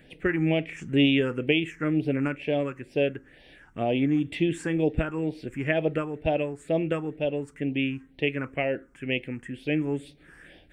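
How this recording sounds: phasing stages 4, 2.1 Hz, lowest notch 610–1300 Hz

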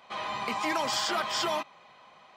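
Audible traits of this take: noise floor -56 dBFS; spectral tilt -1.5 dB/oct

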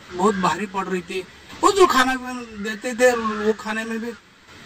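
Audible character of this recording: chopped level 0.67 Hz, depth 60%, duty 35%; a shimmering, thickened sound

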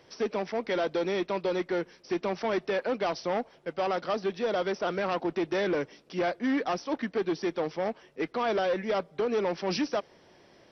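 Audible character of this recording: noise floor -59 dBFS; spectral tilt -3.5 dB/oct

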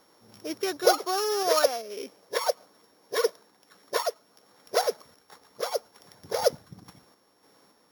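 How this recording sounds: a buzz of ramps at a fixed pitch in blocks of 8 samples; random-step tremolo

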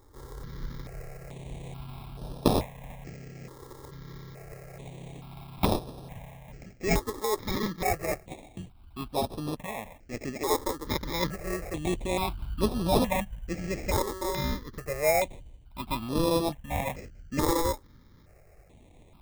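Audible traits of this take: aliases and images of a low sample rate 1500 Hz, jitter 0%; notches that jump at a steady rate 2.3 Hz 680–7100 Hz

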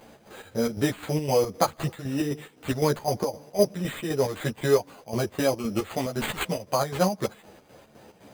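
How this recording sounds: aliases and images of a low sample rate 5500 Hz, jitter 0%; chopped level 3.9 Hz, depth 60%, duty 60%; a shimmering, thickened sound

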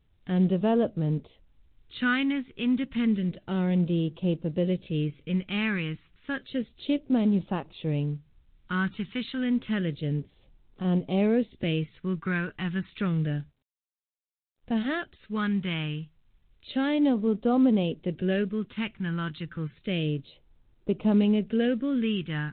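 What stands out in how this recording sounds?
phasing stages 2, 0.3 Hz, lowest notch 570–1700 Hz; µ-law

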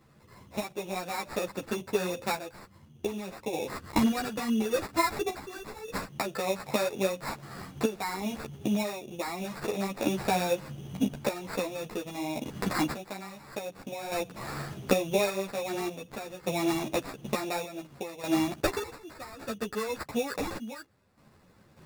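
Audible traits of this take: random-step tremolo 1.7 Hz, depth 85%; aliases and images of a low sample rate 3100 Hz, jitter 0%; a shimmering, thickened sound

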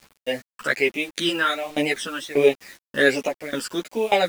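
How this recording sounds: phasing stages 12, 1.3 Hz, lowest notch 680–1500 Hz; tremolo saw down 1.7 Hz, depth 95%; a quantiser's noise floor 8-bit, dither none; a shimmering, thickened sound

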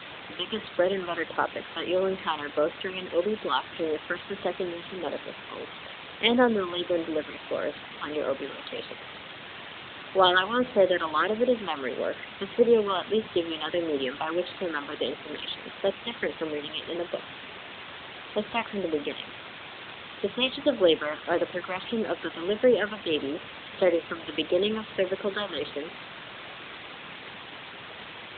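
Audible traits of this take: phasing stages 6, 1.6 Hz, lowest notch 440–3000 Hz; a quantiser's noise floor 6-bit, dither triangular; AMR-NB

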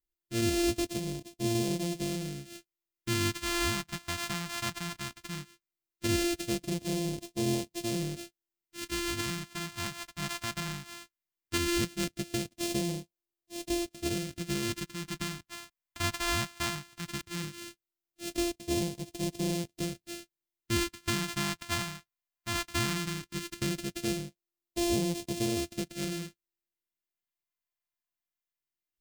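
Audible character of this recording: a buzz of ramps at a fixed pitch in blocks of 128 samples; phasing stages 2, 0.17 Hz, lowest notch 430–1300 Hz; Nellymoser

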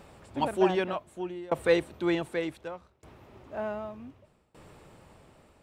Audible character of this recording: tremolo saw down 0.66 Hz, depth 95%

